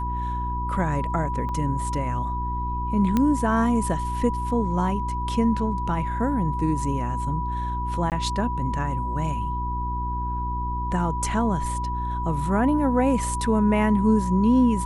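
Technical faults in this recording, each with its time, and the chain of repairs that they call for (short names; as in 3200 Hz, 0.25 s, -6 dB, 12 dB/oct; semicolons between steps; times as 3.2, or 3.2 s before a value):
hum 60 Hz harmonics 6 -29 dBFS
tone 980 Hz -28 dBFS
1.49 gap 3 ms
3.17 pop -10 dBFS
8.1–8.12 gap 18 ms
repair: de-click; de-hum 60 Hz, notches 6; notch 980 Hz, Q 30; interpolate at 1.49, 3 ms; interpolate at 8.1, 18 ms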